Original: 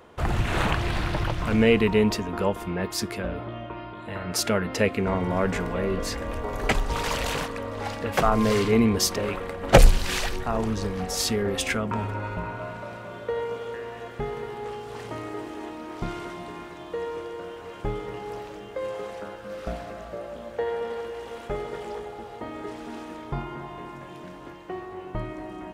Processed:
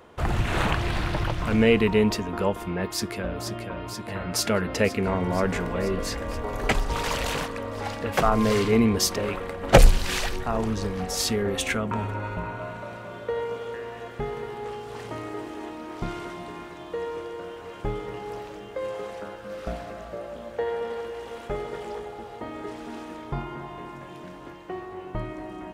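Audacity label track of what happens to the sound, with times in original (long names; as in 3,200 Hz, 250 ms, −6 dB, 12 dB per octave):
2.880000	3.450000	delay throw 480 ms, feedback 80%, level −6.5 dB
11.330000	12.960000	notch filter 5,000 Hz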